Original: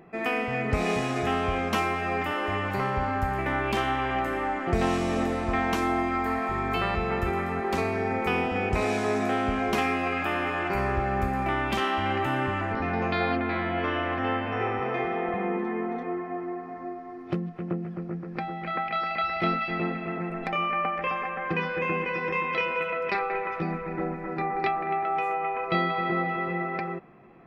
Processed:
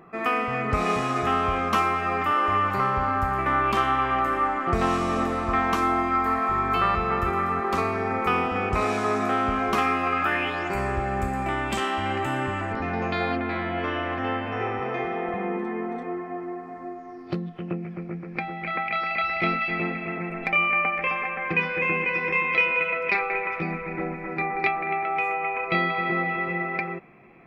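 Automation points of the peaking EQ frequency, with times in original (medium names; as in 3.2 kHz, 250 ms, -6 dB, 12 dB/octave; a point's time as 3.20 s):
peaking EQ +13.5 dB 0.33 oct
10.23 s 1.2 kHz
10.71 s 7.8 kHz
16.89 s 7.8 kHz
17.81 s 2.3 kHz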